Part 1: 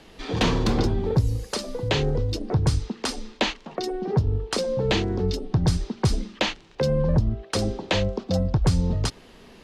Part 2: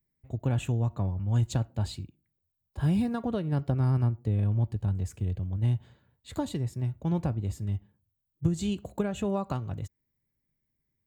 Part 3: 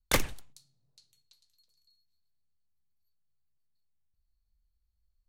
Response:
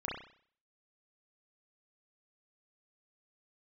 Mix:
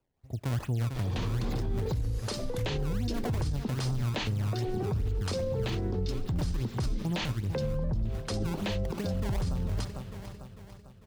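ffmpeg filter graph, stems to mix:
-filter_complex "[0:a]dynaudnorm=f=130:g=13:m=3.76,adelay=750,volume=0.266,asplit=2[s0][s1];[s1]volume=0.075[s2];[1:a]highpass=f=51:p=1,acrusher=samples=21:mix=1:aa=0.000001:lfo=1:lforange=33.6:lforate=2.5,volume=0.794,asplit=2[s3][s4];[s4]volume=0.282[s5];[2:a]alimiter=level_in=1.06:limit=0.0631:level=0:latency=1:release=216,volume=0.944,adelay=2450,volume=0.447[s6];[s2][s5]amix=inputs=2:normalize=0,aecho=0:1:448|896|1344|1792|2240|2688|3136:1|0.48|0.23|0.111|0.0531|0.0255|0.0122[s7];[s0][s3][s6][s7]amix=inputs=4:normalize=0,lowshelf=f=91:g=8,alimiter=limit=0.0668:level=0:latency=1:release=63"

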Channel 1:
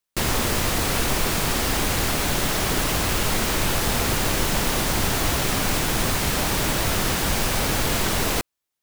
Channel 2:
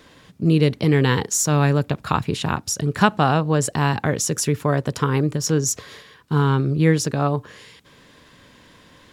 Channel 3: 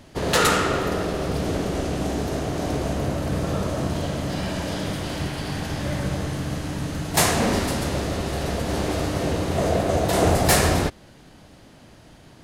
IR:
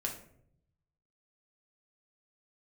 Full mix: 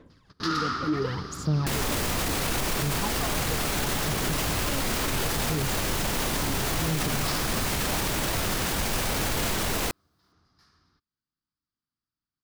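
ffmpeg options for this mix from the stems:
-filter_complex "[0:a]adelay=1500,volume=0.944[s0];[1:a]aphaser=in_gain=1:out_gain=1:delay=4.1:decay=0.78:speed=0.71:type=sinusoidal,tiltshelf=f=1100:g=5.5,volume=0.133,asplit=2[s1][s2];[2:a]firequalizer=gain_entry='entry(290,0);entry(580,-16);entry(1200,11);entry(2600,-10);entry(4900,6);entry(7500,-24)':delay=0.05:min_phase=1,aexciter=amount=2.7:drive=4.4:freq=2500,adelay=100,volume=0.237[s3];[s2]apad=whole_len=557372[s4];[s3][s4]sidechaingate=range=0.0178:threshold=0.00141:ratio=16:detection=peak[s5];[s0][s1][s5]amix=inputs=3:normalize=0,alimiter=limit=0.126:level=0:latency=1:release=23"

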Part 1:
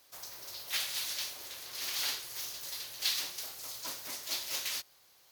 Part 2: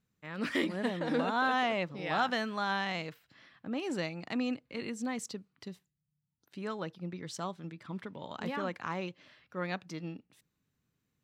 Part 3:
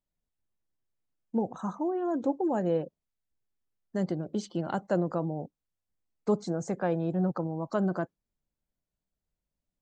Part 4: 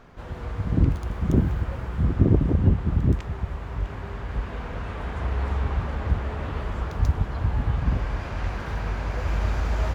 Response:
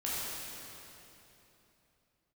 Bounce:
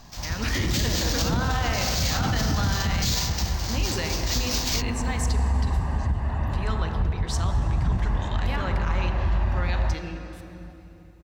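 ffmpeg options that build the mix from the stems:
-filter_complex "[0:a]equalizer=f=5200:w=0.97:g=12,acrusher=samples=4:mix=1:aa=0.000001,volume=1.12[s0];[1:a]volume=1.41,asplit=2[s1][s2];[s2]volume=0.422[s3];[2:a]adelay=1600,volume=0.178[s4];[3:a]lowpass=f=1600:p=1,aecho=1:1:1.1:0.73,acompressor=threshold=0.141:ratio=6,volume=0.891,asplit=2[s5][s6];[s6]volume=0.133[s7];[s1][s4]amix=inputs=2:normalize=0,tiltshelf=f=970:g=-7.5,acompressor=threshold=0.0355:ratio=6,volume=1[s8];[4:a]atrim=start_sample=2205[s9];[s3][s7]amix=inputs=2:normalize=0[s10];[s10][s9]afir=irnorm=-1:irlink=0[s11];[s0][s5][s8][s11]amix=inputs=4:normalize=0,alimiter=limit=0.168:level=0:latency=1:release=24"

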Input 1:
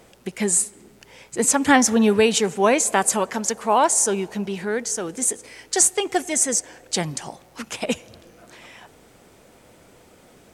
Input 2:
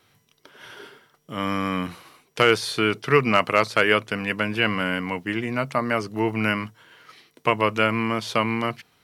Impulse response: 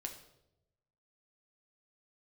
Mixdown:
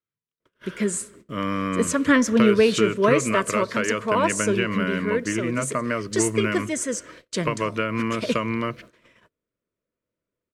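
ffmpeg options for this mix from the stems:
-filter_complex "[0:a]adynamicequalizer=threshold=0.0178:dfrequency=9700:dqfactor=1.1:tfrequency=9700:tqfactor=1.1:attack=5:release=100:ratio=0.375:range=4:mode=cutabove:tftype=bell,adelay=400,volume=0.891,asplit=2[s0][s1];[s1]volume=0.2[s2];[1:a]acompressor=threshold=0.0891:ratio=6,volume=1.26,asplit=2[s3][s4];[s4]volume=0.0631[s5];[2:a]atrim=start_sample=2205[s6];[s2][s5]amix=inputs=2:normalize=0[s7];[s7][s6]afir=irnorm=-1:irlink=0[s8];[s0][s3][s8]amix=inputs=3:normalize=0,agate=range=0.02:threshold=0.00794:ratio=16:detection=peak,asuperstop=centerf=790:order=4:qfactor=2.5,highshelf=f=3500:g=-11"

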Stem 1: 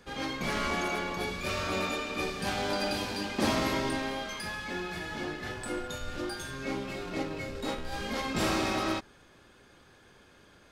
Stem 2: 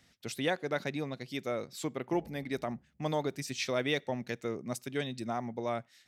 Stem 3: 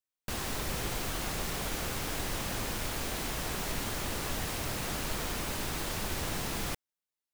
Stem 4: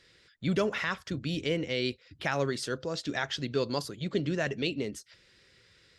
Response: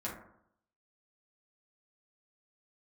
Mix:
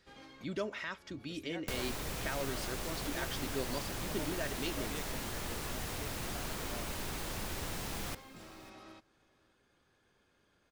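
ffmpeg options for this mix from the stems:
-filter_complex "[0:a]acompressor=threshold=0.0141:ratio=4,volume=0.188,asplit=2[s0][s1];[s1]volume=0.0708[s2];[1:a]adelay=1050,volume=0.168[s3];[2:a]acrossover=split=98|1500[s4][s5][s6];[s4]acompressor=threshold=0.00631:ratio=4[s7];[s5]acompressor=threshold=0.00562:ratio=4[s8];[s6]acompressor=threshold=0.00562:ratio=4[s9];[s7][s8][s9]amix=inputs=3:normalize=0,adelay=1400,volume=1.26,asplit=2[s10][s11];[s11]volume=0.1[s12];[3:a]aecho=1:1:3.2:0.47,volume=0.335,asplit=2[s13][s14];[s14]apad=whole_len=472492[s15];[s0][s15]sidechaincompress=threshold=0.00224:ratio=8:attack=28:release=210[s16];[s2][s12]amix=inputs=2:normalize=0,aecho=0:1:547:1[s17];[s16][s3][s10][s13][s17]amix=inputs=5:normalize=0"

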